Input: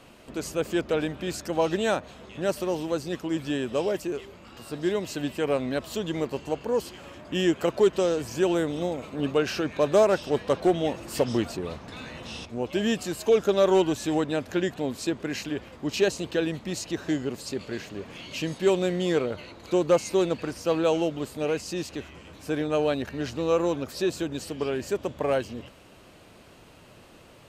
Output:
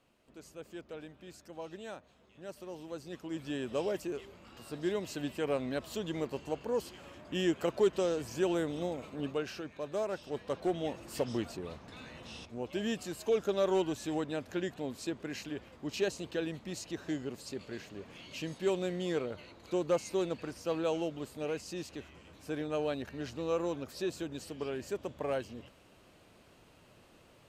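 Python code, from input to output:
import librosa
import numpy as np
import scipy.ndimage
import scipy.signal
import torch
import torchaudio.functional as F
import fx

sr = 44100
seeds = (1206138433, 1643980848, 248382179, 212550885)

y = fx.gain(x, sr, db=fx.line((2.4, -19.5), (3.73, -7.0), (9.06, -7.0), (9.81, -16.5), (10.86, -9.0)))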